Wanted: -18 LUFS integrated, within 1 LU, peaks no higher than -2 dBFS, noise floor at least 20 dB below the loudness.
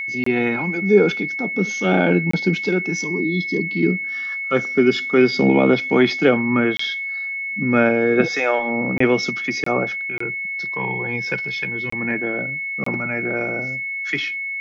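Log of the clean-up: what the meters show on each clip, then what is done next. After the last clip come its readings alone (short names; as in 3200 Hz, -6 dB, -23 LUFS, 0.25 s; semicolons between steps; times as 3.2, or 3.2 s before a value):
dropouts 8; longest dropout 24 ms; steady tone 2200 Hz; tone level -24 dBFS; loudness -19.5 LUFS; peak -3.0 dBFS; loudness target -18.0 LUFS
-> interpolate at 0.24/2.31/6.77/8.98/9.64/10.18/11.9/12.84, 24 ms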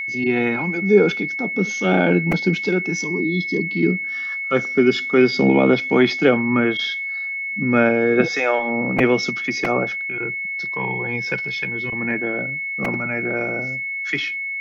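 dropouts 0; steady tone 2200 Hz; tone level -24 dBFS
-> notch 2200 Hz, Q 30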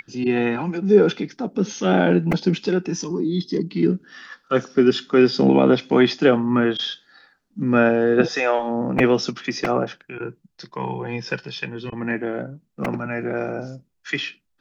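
steady tone none; loudness -21.0 LUFS; peak -3.0 dBFS; loudness target -18.0 LUFS
-> gain +3 dB; limiter -2 dBFS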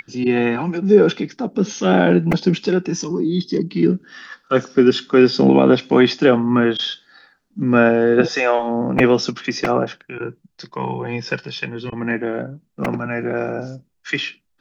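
loudness -18.0 LUFS; peak -2.0 dBFS; noise floor -65 dBFS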